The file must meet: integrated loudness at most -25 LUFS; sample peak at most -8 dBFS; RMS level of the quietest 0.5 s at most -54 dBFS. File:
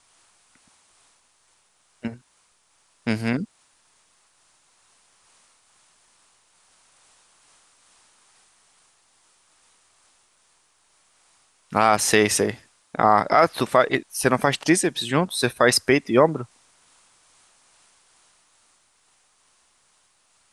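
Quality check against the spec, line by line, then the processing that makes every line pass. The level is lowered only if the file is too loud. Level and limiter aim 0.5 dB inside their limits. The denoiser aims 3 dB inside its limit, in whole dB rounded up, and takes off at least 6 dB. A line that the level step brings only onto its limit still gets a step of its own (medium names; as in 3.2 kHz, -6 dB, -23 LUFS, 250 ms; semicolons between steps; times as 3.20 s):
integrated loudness -21.0 LUFS: fail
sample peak -3.5 dBFS: fail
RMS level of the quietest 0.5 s -64 dBFS: pass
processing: trim -4.5 dB; peak limiter -8.5 dBFS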